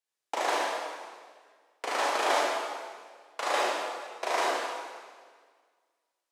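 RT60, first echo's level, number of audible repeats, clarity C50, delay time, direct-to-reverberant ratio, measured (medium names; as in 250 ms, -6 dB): 1.7 s, no echo, no echo, -3.0 dB, no echo, -6.0 dB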